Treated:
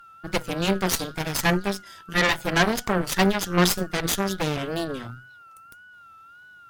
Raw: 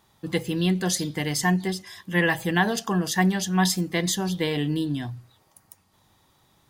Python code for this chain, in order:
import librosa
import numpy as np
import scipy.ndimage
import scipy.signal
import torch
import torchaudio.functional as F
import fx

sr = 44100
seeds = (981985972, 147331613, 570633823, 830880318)

y = x + 10.0 ** (-41.0 / 20.0) * np.sin(2.0 * np.pi * 1400.0 * np.arange(len(x)) / sr)
y = fx.wow_flutter(y, sr, seeds[0], rate_hz=2.1, depth_cents=94.0)
y = fx.cheby_harmonics(y, sr, harmonics=(6, 7), levels_db=(-10, -24), full_scale_db=-7.5)